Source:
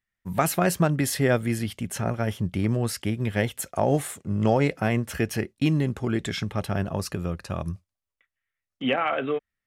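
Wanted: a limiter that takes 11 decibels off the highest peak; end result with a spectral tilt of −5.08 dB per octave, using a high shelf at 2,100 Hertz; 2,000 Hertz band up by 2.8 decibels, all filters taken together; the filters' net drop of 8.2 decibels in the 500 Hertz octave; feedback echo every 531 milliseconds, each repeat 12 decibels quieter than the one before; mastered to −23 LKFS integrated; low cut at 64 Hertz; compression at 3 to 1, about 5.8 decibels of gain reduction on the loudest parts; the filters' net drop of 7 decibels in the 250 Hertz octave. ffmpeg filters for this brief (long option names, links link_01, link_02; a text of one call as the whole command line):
ffmpeg -i in.wav -af "highpass=64,equalizer=frequency=250:width_type=o:gain=-7.5,equalizer=frequency=500:width_type=o:gain=-8.5,equalizer=frequency=2000:width_type=o:gain=8.5,highshelf=frequency=2100:gain=-8,acompressor=threshold=-28dB:ratio=3,alimiter=level_in=1dB:limit=-24dB:level=0:latency=1,volume=-1dB,aecho=1:1:531|1062|1593:0.251|0.0628|0.0157,volume=13dB" out.wav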